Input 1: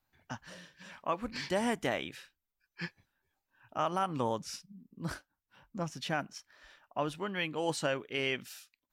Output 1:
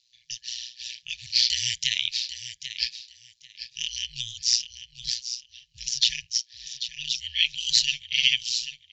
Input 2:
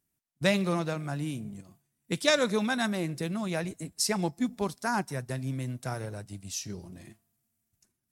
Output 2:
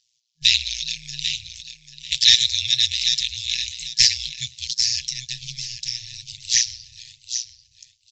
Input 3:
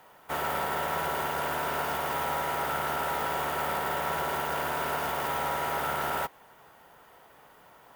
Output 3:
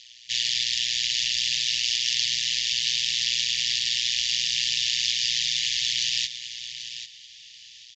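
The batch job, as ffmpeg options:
ffmpeg -i in.wav -af "aemphasis=mode=production:type=bsi,tremolo=f=120:d=1,lowshelf=frequency=130:gain=3.5,aecho=1:1:791|1582:0.266|0.0506,aexciter=amount=10.8:drive=5.9:freq=2800,aresample=16000,asoftclip=type=tanh:threshold=-5.5dB,aresample=44100,lowpass=frequency=5000:width=0.5412,lowpass=frequency=5000:width=1.3066,afftfilt=real='re*(1-between(b*sr/4096,160,1700))':imag='im*(1-between(b*sr/4096,160,1700))':win_size=4096:overlap=0.75,volume=3dB" out.wav

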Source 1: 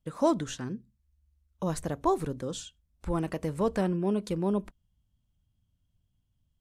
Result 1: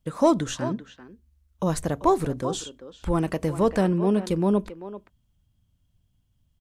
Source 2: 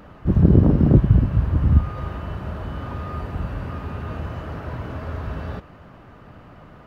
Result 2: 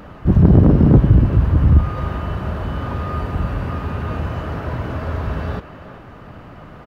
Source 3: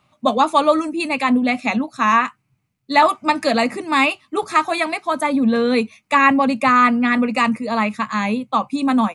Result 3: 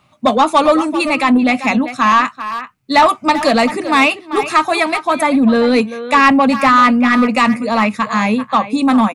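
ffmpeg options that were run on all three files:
ffmpeg -i in.wav -filter_complex "[0:a]asplit=2[link_01][link_02];[link_02]adelay=390,highpass=300,lowpass=3400,asoftclip=type=hard:threshold=-11dB,volume=-12dB[link_03];[link_01][link_03]amix=inputs=2:normalize=0,acontrast=84,volume=-1dB" out.wav

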